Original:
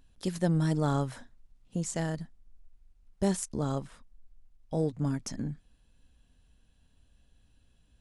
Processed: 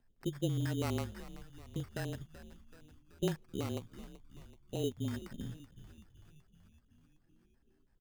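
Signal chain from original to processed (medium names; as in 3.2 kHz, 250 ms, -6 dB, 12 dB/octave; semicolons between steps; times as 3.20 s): frequency shift -27 Hz; LFO low-pass square 6.1 Hz 390–2000 Hz; sample-rate reducer 3.4 kHz, jitter 0%; on a send: frequency-shifting echo 380 ms, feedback 62%, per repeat -71 Hz, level -15 dB; on the sum: trim -8.5 dB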